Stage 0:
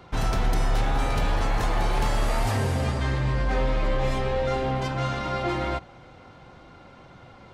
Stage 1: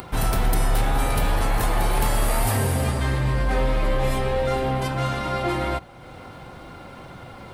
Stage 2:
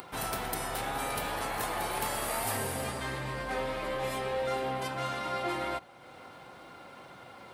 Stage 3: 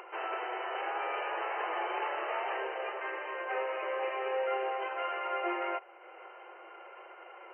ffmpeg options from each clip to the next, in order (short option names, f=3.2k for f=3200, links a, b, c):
-af "acompressor=mode=upward:threshold=-35dB:ratio=2.5,aexciter=amount=4.7:drive=6.2:freq=8.7k,volume=2.5dB"
-af "highpass=f=420:p=1,volume=-6dB"
-af "afftfilt=real='re*between(b*sr/4096,330,3100)':imag='im*between(b*sr/4096,330,3100)':win_size=4096:overlap=0.75"